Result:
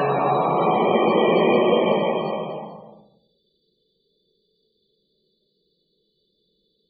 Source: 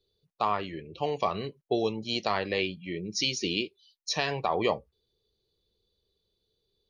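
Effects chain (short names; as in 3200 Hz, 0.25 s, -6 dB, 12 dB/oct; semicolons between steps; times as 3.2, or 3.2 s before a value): Paulstretch 5.2×, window 0.50 s, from 4.38; resonant low shelf 130 Hz -10.5 dB, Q 3; loudest bins only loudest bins 64; gain +8.5 dB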